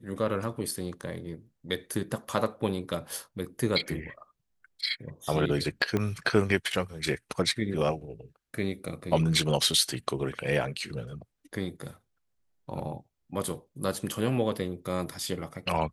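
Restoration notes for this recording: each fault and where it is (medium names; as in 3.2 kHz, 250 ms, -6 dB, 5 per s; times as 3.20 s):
0.71 s: dropout 3.5 ms
5.97 s: pop -15 dBFS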